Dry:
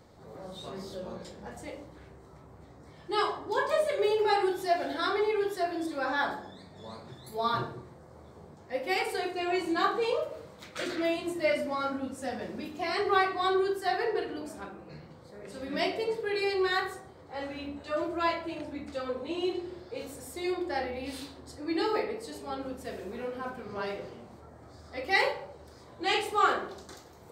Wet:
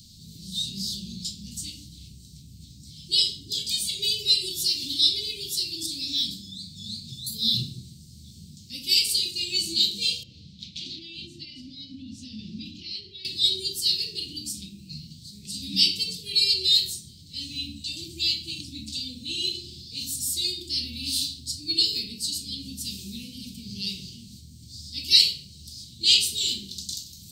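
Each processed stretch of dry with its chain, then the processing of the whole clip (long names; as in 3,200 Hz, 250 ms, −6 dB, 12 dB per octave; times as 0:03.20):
0:10.23–0:13.25: downward compressor 5 to 1, threshold −35 dBFS + high-frequency loss of the air 220 metres
whole clip: elliptic band-stop filter 210–4,300 Hz, stop band 80 dB; high shelf with overshoot 2,000 Hz +11 dB, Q 3; level +8 dB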